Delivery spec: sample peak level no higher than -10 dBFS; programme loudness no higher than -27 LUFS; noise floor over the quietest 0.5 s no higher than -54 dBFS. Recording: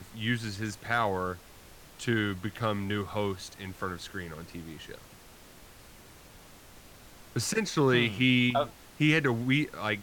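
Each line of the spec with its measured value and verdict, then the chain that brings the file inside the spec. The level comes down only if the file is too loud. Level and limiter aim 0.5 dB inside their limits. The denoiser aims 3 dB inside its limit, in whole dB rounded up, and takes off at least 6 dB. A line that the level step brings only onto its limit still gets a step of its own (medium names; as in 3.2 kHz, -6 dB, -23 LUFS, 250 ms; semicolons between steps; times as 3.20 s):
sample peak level -13.0 dBFS: pass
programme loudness -29.0 LUFS: pass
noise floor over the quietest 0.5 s -52 dBFS: fail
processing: noise reduction 6 dB, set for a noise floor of -52 dBFS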